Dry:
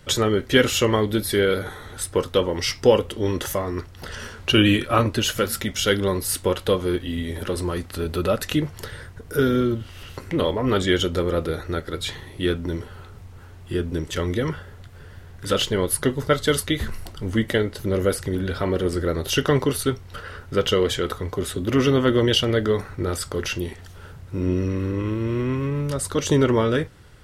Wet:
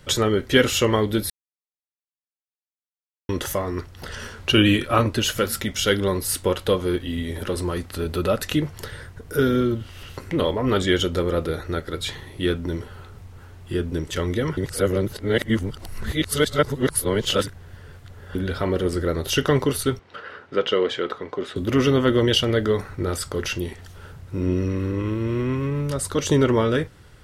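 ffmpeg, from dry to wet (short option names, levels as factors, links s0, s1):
-filter_complex "[0:a]asettb=1/sr,asplit=3[s0][s1][s2];[s0]atrim=end=19.994[s3];[s1]atrim=start=19.99:end=21.56,asetpts=PTS-STARTPTS,afade=t=in:d=0.004:c=qsin,afade=t=out:st=1.566:d=0.004:c=qsin,highpass=260,lowpass=3400[s4];[s2]atrim=start=21.556[s5];[s3][s4]acrossfade=d=0.004:c1=hsin:c2=qsin[s6];[s6][s5]acrossfade=d=0.004:c1=qsin:c2=hsin,asplit=5[s7][s8][s9][s10][s11];[s7]atrim=end=1.3,asetpts=PTS-STARTPTS,afade=t=out:st=1.296:d=0.004:c=hsin[s12];[s8]atrim=start=1.3:end=3.29,asetpts=PTS-STARTPTS,volume=0[s13];[s9]atrim=start=3.29:end=14.572,asetpts=PTS-STARTPTS,afade=t=in:d=0.004:c=hsin[s14];[s10]atrim=start=14.568:end=18.352,asetpts=PTS-STARTPTS,areverse[s15];[s11]atrim=start=18.348[s16];[s12][s13][s14]concat=n=3:v=0:a=1[s17];[s17][s15]acrossfade=d=0.004:c1=hsin:c2=hsin[s18];[s18][s16]acrossfade=d=0.004:c1=hsin:c2=hsin"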